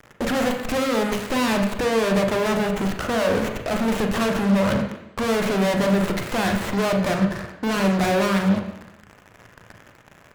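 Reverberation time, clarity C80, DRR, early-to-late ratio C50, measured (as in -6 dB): 0.85 s, 8.5 dB, 3.0 dB, 6.0 dB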